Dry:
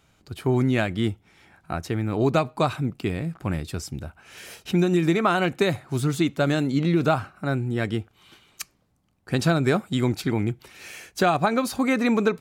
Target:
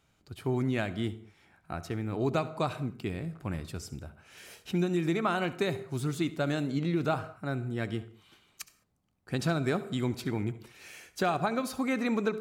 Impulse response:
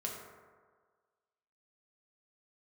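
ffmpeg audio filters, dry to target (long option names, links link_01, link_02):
-filter_complex "[0:a]asplit=2[link_01][link_02];[1:a]atrim=start_sample=2205,afade=type=out:start_time=0.2:duration=0.01,atrim=end_sample=9261,adelay=68[link_03];[link_02][link_03]afir=irnorm=-1:irlink=0,volume=-15dB[link_04];[link_01][link_04]amix=inputs=2:normalize=0,volume=-8dB"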